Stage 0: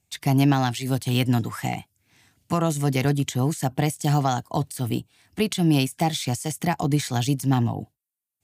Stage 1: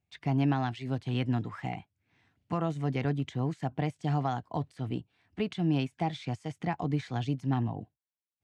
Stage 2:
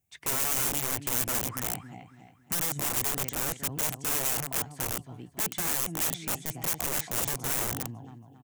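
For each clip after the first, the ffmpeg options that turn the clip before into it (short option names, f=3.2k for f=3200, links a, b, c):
-af "lowpass=2.7k,volume=-8dB"
-af "aecho=1:1:276|552|828|1104:0.299|0.116|0.0454|0.0177,aeval=exprs='(mod(29.9*val(0)+1,2)-1)/29.9':c=same,aexciter=amount=3:drive=8.2:freq=6.1k"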